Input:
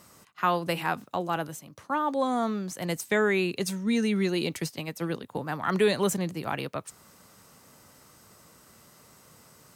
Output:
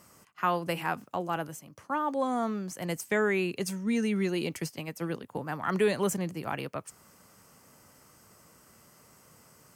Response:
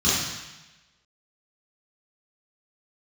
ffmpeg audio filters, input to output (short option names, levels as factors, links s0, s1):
-af "equalizer=f=3800:w=5.7:g=-10,volume=0.75"